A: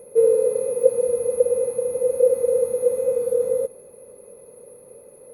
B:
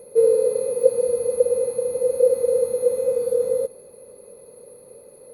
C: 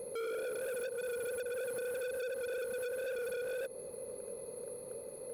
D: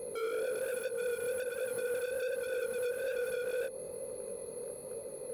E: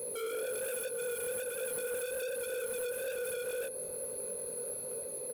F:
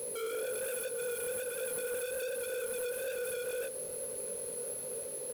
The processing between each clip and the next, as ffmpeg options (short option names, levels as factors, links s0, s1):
-af "equalizer=f=4300:t=o:w=0.37:g=11"
-af "acompressor=threshold=0.0447:ratio=6,asoftclip=type=hard:threshold=0.015"
-af "flanger=delay=17.5:depth=7.2:speed=1.2,volume=1.88"
-filter_complex "[0:a]acrossover=split=980[s0][s1];[s1]aexciter=amount=1.7:drive=6.8:freq=2600[s2];[s0][s2]amix=inputs=2:normalize=0,asoftclip=type=tanh:threshold=0.0282,asplit=2[s3][s4];[s4]adelay=1399,volume=0.141,highshelf=f=4000:g=-31.5[s5];[s3][s5]amix=inputs=2:normalize=0"
-af "acrusher=bits=7:mix=0:aa=0.5"